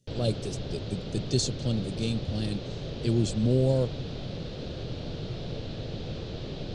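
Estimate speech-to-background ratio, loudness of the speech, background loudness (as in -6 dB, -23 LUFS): 7.5 dB, -29.5 LUFS, -37.0 LUFS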